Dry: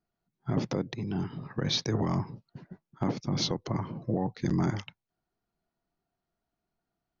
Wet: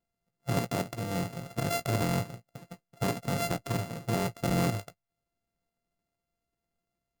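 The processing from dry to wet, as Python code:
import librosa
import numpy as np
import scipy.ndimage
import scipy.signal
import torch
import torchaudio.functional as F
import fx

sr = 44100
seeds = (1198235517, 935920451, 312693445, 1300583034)

y = np.r_[np.sort(x[:len(x) // 64 * 64].reshape(-1, 64), axis=1).ravel(), x[len(x) // 64 * 64:]]
y = fx.peak_eq(y, sr, hz=2400.0, db=-3.0, octaves=2.6)
y = fx.doubler(y, sr, ms=17.0, db=-11)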